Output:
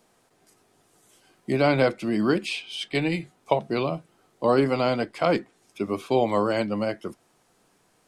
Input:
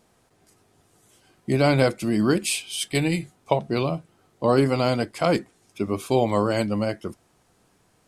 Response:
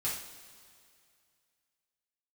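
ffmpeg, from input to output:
-filter_complex "[0:a]equalizer=f=62:t=o:w=2:g=-13,acrossover=split=140|4600[s0][s1][s2];[s2]acompressor=threshold=0.00178:ratio=5[s3];[s0][s1][s3]amix=inputs=3:normalize=0"

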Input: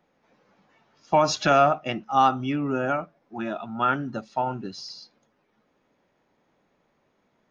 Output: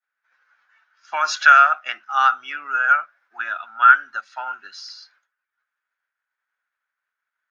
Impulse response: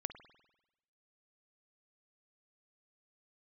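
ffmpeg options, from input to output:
-af "agate=range=0.0224:threshold=0.00141:ratio=3:detection=peak,highpass=f=1500:t=q:w=7.1,volume=1.12"

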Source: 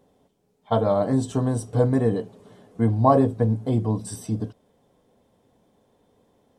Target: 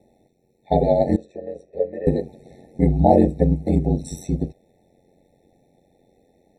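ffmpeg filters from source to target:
-filter_complex "[0:a]asettb=1/sr,asplit=3[s0][s1][s2];[s0]atrim=end=1.164[s3];[s1]atrim=start=1.16:end=2.07,asetpts=PTS-STARTPTS,afade=t=in:d=0.004:c=qsin,afade=t=out:st=0.906:d=0.004:c=qsin,asplit=3[s4][s5][s6];[s4]bandpass=f=530:t=q:w=8,volume=1[s7];[s5]bandpass=f=1840:t=q:w=8,volume=0.501[s8];[s6]bandpass=f=2480:t=q:w=8,volume=0.355[s9];[s7][s8][s9]amix=inputs=3:normalize=0[s10];[s2]atrim=start=2.066[s11];[s3][s10]acrossfade=d=0.004:c1=hsin:c2=qsin[s12];[s12][s11]acrossfade=d=0.004:c1=qsin:c2=hsin,aeval=exprs='val(0)*sin(2*PI*45*n/s)':c=same,afftfilt=real='re*eq(mod(floor(b*sr/1024/880),2),0)':imag='im*eq(mod(floor(b*sr/1024/880),2),0)':win_size=1024:overlap=0.75,volume=2.11"

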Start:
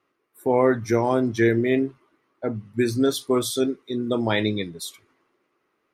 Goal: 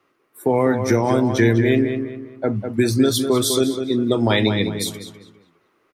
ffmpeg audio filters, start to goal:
-filter_complex "[0:a]acrossover=split=190|3000[s0][s1][s2];[s1]acompressor=threshold=0.0562:ratio=3[s3];[s0][s3][s2]amix=inputs=3:normalize=0,asplit=2[s4][s5];[s5]adelay=201,lowpass=f=2800:p=1,volume=0.447,asplit=2[s6][s7];[s7]adelay=201,lowpass=f=2800:p=1,volume=0.37,asplit=2[s8][s9];[s9]adelay=201,lowpass=f=2800:p=1,volume=0.37,asplit=2[s10][s11];[s11]adelay=201,lowpass=f=2800:p=1,volume=0.37[s12];[s4][s6][s8][s10][s12]amix=inputs=5:normalize=0,volume=2.37"

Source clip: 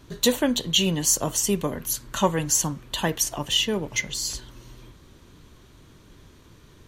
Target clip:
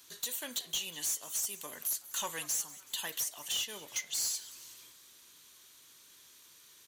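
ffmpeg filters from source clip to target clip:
-filter_complex "[0:a]aderivative,asplit=2[s0][s1];[s1]acompressor=threshold=0.0141:ratio=6,volume=0.944[s2];[s0][s2]amix=inputs=2:normalize=0,alimiter=limit=0.126:level=0:latency=1:release=334,asoftclip=type=tanh:threshold=0.0376,asplit=5[s3][s4][s5][s6][s7];[s4]adelay=188,afreqshift=130,volume=0.126[s8];[s5]adelay=376,afreqshift=260,volume=0.0653[s9];[s6]adelay=564,afreqshift=390,volume=0.0339[s10];[s7]adelay=752,afreqshift=520,volume=0.0178[s11];[s3][s8][s9][s10][s11]amix=inputs=5:normalize=0"

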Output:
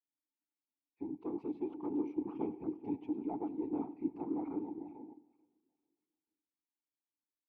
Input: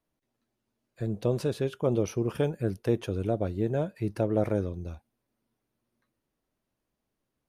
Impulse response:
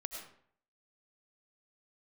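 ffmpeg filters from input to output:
-filter_complex "[0:a]lowshelf=f=100:g=-8,asplit=2[s0][s1];[1:a]atrim=start_sample=2205[s2];[s1][s2]afir=irnorm=-1:irlink=0,volume=0.158[s3];[s0][s3]amix=inputs=2:normalize=0,asplit=2[s4][s5];[s5]highpass=f=720:p=1,volume=7.94,asoftclip=type=tanh:threshold=0.501[s6];[s4][s6]amix=inputs=2:normalize=0,lowpass=f=2500:p=1,volume=0.501,asettb=1/sr,asplit=3[s7][s8][s9];[s7]atrim=end=2.184[s10];[s8]atrim=start=2.18:end=3.86,asetpts=PTS-STARTPTS,afade=t=in:d=0.004:c=qsin,afade=t=out:st=1.676:d=0.004:c=qsin,aecho=1:1:7.3:0.79,atrim=end_sample=74088[s11];[s9]atrim=start=3.856[s12];[s10][s11]acrossfade=d=0.004:c1=hsin:c2=qsin[s13];[s13][s12]acrossfade=d=0.004:c1=qsin:c2=hsin,asplit=2[s14][s15];[s15]adelay=440,lowpass=f=1700:p=1,volume=0.282,asplit=2[s16][s17];[s17]adelay=440,lowpass=f=1700:p=1,volume=0.33,asplit=2[s18][s19];[s19]adelay=440,lowpass=f=1700:p=1,volume=0.33,asplit=2[s20][s21];[s21]adelay=440,lowpass=f=1700:p=1,volume=0.33[s22];[s16][s18][s20][s22]amix=inputs=4:normalize=0[s23];[s14][s23]amix=inputs=2:normalize=0,afwtdn=0.0447,afftfilt=real='hypot(re,im)*cos(2*PI*random(0))':imag='hypot(re,im)*sin(2*PI*random(1))':win_size=512:overlap=0.75,asplit=3[s24][s25][s26];[s24]bandpass=f=300:t=q:w=8,volume=1[s27];[s25]bandpass=f=870:t=q:w=8,volume=0.501[s28];[s26]bandpass=f=2240:t=q:w=8,volume=0.355[s29];[s27][s28][s29]amix=inputs=3:normalize=0,equalizer=f=610:w=1.2:g=-3.5,aecho=1:1:95|190|285|380|475:0.0944|0.0557|0.0329|0.0194|0.0114,volume=1.5"

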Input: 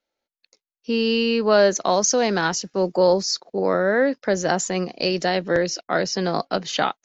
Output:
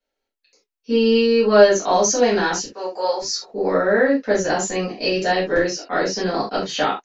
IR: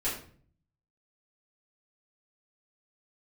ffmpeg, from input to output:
-filter_complex "[0:a]asettb=1/sr,asplit=3[s0][s1][s2];[s0]atrim=end=2.644[s3];[s1]atrim=start=2.64:end=3.22,asetpts=PTS-STARTPTS,afade=t=in:d=0.004:c=qsin,afade=t=out:st=0.576:d=0.004:c=qsin,highpass=740[s4];[s2]atrim=start=3.216[s5];[s3][s4]acrossfade=d=0.004:c1=hsin:c2=qsin[s6];[s6][s5]acrossfade=d=0.004:c1=qsin:c2=hsin[s7];[1:a]atrim=start_sample=2205,atrim=end_sample=3969[s8];[s7][s8]afir=irnorm=-1:irlink=0,volume=0.631"

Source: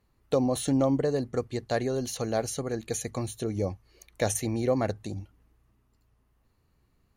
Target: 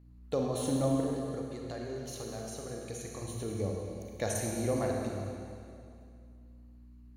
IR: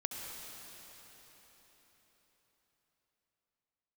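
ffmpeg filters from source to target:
-filter_complex "[0:a]asettb=1/sr,asplit=3[s0][s1][s2];[s0]atrim=end=1.004[s3];[s1]atrim=start=1:end=3.22,asetpts=PTS-STARTPTS,afade=t=in:d=0.004:c=qsin,afade=t=out:st=2.216:d=0.004:c=qsin,acompressor=threshold=0.0224:ratio=6[s4];[s2]atrim=start=3.216[s5];[s3][s4]acrossfade=d=0.004:c1=hsin:c2=qsin[s6];[s6][s5]acrossfade=d=0.004:c1=qsin:c2=hsin,aeval=exprs='val(0)+0.00398*(sin(2*PI*60*n/s)+sin(2*PI*2*60*n/s)/2+sin(2*PI*3*60*n/s)/3+sin(2*PI*4*60*n/s)/4+sin(2*PI*5*60*n/s)/5)':c=same[s7];[1:a]atrim=start_sample=2205,asetrate=83790,aresample=44100[s8];[s7][s8]afir=irnorm=-1:irlink=0"

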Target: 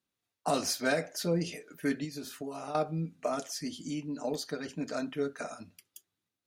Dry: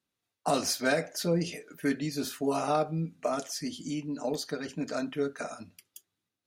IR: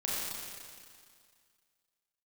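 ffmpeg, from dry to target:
-filter_complex "[0:a]asettb=1/sr,asplit=3[s0][s1][s2];[s0]atrim=end=2.044[s3];[s1]atrim=start=2.04:end=2.75,asetpts=PTS-STARTPTS,afade=t=in:d=0.004:c=qsin,afade=t=out:st=0.706:d=0.004:c=qsin,acompressor=threshold=0.0178:ratio=6[s4];[s2]atrim=start=2.746[s5];[s3][s4]acrossfade=d=0.004:c1=hsin:c2=qsin[s6];[s6][s5]acrossfade=d=0.004:c1=qsin:c2=hsin,volume=0.794"

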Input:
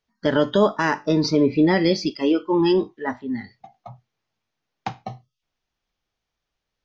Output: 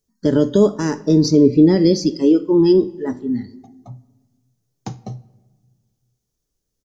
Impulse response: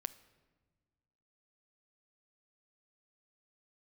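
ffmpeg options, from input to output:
-filter_complex "[0:a]firequalizer=gain_entry='entry(410,0);entry(690,-13);entry(2400,-17);entry(7000,7)':delay=0.05:min_phase=1,asplit=2[s0][s1];[1:a]atrim=start_sample=2205[s2];[s1][s2]afir=irnorm=-1:irlink=0,volume=3.35[s3];[s0][s3]amix=inputs=2:normalize=0,volume=0.562"

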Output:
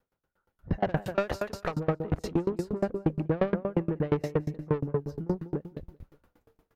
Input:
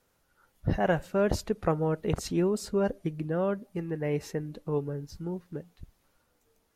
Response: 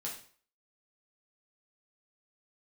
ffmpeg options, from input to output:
-filter_complex "[0:a]asettb=1/sr,asplit=3[s0][s1][s2];[s0]atrim=end=0.974[s3];[s1]atrim=start=0.97:end=1.74,asetpts=PTS-STARTPTS,afade=t=in:d=0.004:c=qsin,afade=t=out:st=0.766:d=0.004:c=qsin,tiltshelf=f=630:g=-9.5[s4];[s2]atrim=start=1.736[s5];[s3][s4]acrossfade=d=0.004:c1=hsin:c2=qsin[s6];[s6][s5]acrossfade=d=0.004:c1=qsin:c2=hsin,asettb=1/sr,asplit=3[s7][s8][s9];[s7]atrim=end=2.414[s10];[s8]atrim=start=2.41:end=2.89,asetpts=PTS-STARTPTS,afade=t=in:d=0.004:c=qsin,afade=t=out:st=0.476:d=0.004:c=qsin,acompressor=threshold=0.0355:ratio=3[s11];[s9]atrim=start=2.886[s12];[s10][s11]acrossfade=d=0.004:c1=hsin:c2=qsin[s13];[s13][s12]acrossfade=d=0.004:c1=qsin:c2=hsin,equalizer=f=8300:t=o:w=2.6:g=-15,asplit=2[s14][s15];[s15]aecho=0:1:194|388|582:0.335|0.0971|0.0282[s16];[s14][s16]amix=inputs=2:normalize=0,dynaudnorm=f=140:g=11:m=5.01,asoftclip=type=tanh:threshold=0.178,aeval=exprs='val(0)*pow(10,-29*if(lt(mod(8.5*n/s,1),2*abs(8.5)/1000),1-mod(8.5*n/s,1)/(2*abs(8.5)/1000),(mod(8.5*n/s,1)-2*abs(8.5)/1000)/(1-2*abs(8.5)/1000))/20)':c=same"

